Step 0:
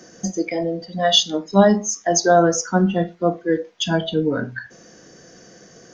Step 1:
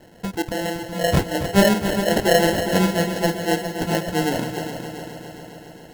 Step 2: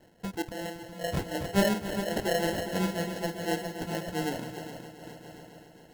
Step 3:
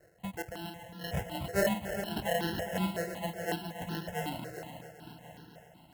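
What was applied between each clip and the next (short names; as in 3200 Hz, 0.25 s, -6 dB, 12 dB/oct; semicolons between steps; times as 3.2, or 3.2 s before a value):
sample-and-hold 37×; multi-head echo 0.136 s, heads second and third, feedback 62%, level -10 dB; gain -2.5 dB
noise-modulated level, depth 65%; gain -7.5 dB
HPF 46 Hz; step phaser 5.4 Hz 910–2200 Hz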